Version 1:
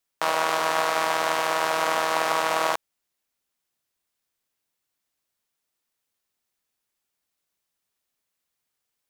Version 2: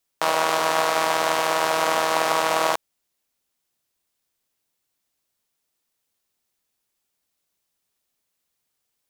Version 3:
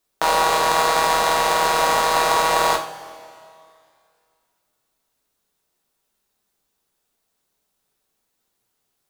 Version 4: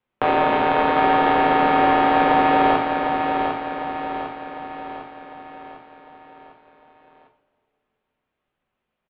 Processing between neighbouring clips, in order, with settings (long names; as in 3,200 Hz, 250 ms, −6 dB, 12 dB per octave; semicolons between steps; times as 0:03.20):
parametric band 1,600 Hz −3 dB 1.7 octaves; level +4 dB
in parallel at −9 dB: decimation without filtering 16×; on the sum: coupled-rooms reverb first 0.37 s, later 2.4 s, from −18 dB, DRR 1 dB
repeating echo 752 ms, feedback 51%, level −5.5 dB; single-sideband voice off tune −200 Hz 160–3,100 Hz